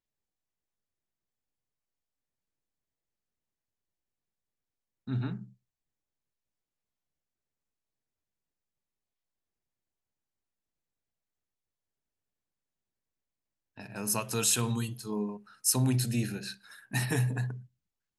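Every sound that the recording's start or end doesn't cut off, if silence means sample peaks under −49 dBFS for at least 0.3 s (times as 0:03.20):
0:05.07–0:05.49
0:13.78–0:17.65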